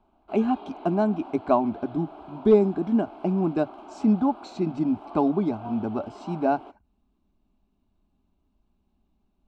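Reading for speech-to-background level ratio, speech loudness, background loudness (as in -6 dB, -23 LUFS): 18.0 dB, -25.5 LUFS, -43.5 LUFS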